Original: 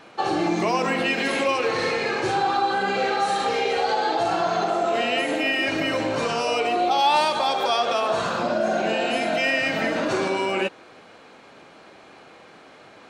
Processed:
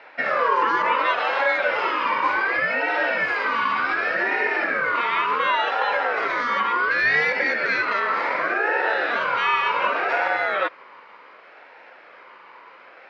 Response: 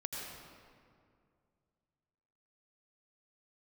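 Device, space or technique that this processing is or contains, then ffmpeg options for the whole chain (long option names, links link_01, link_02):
voice changer toy: -af "aeval=exprs='val(0)*sin(2*PI*890*n/s+890*0.25/0.68*sin(2*PI*0.68*n/s))':channel_layout=same,highpass=510,equalizer=frequency=520:width_type=q:width=4:gain=5,equalizer=frequency=970:width_type=q:width=4:gain=9,equalizer=frequency=2200:width_type=q:width=4:gain=4,equalizer=frequency=3400:width_type=q:width=4:gain=-10,lowpass=frequency=3800:width=0.5412,lowpass=frequency=3800:width=1.3066,volume=3.5dB"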